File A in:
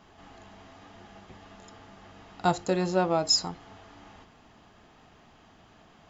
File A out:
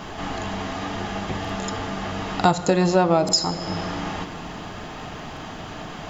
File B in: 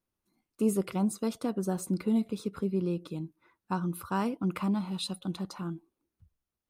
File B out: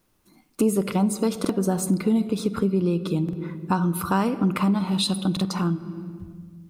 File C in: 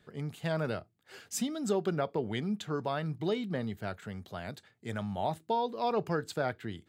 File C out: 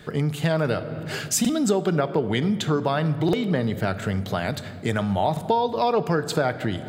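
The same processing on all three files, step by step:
shoebox room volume 2100 m³, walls mixed, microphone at 0.46 m; compressor 2.5:1, threshold -43 dBFS; stuck buffer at 1.4/3.24/5.32, samples 2048, times 1; match loudness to -24 LUFS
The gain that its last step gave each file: +21.0, +19.0, +19.5 dB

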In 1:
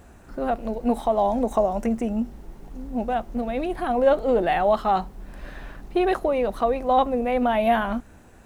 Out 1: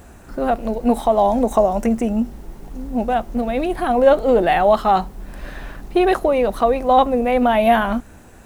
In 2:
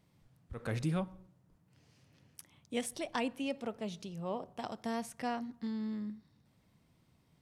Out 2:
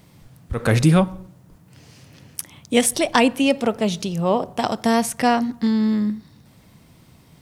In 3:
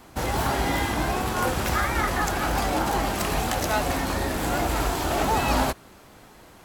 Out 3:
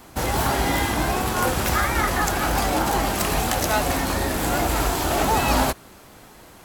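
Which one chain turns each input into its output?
high shelf 6800 Hz +5 dB; normalise peaks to -1.5 dBFS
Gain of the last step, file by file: +5.5, +18.5, +2.5 dB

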